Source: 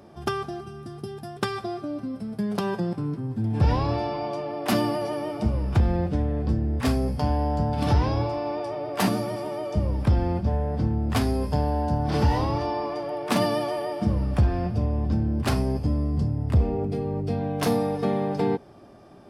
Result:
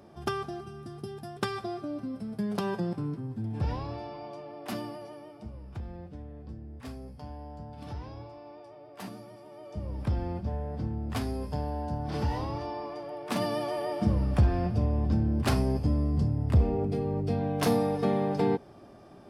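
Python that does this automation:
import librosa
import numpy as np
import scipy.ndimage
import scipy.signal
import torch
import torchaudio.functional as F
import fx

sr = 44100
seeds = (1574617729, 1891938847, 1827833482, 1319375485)

y = fx.gain(x, sr, db=fx.line((3.02, -4.0), (3.9, -12.0), (4.66, -12.0), (5.45, -18.5), (9.44, -18.5), (10.02, -8.5), (13.25, -8.5), (13.94, -2.0)))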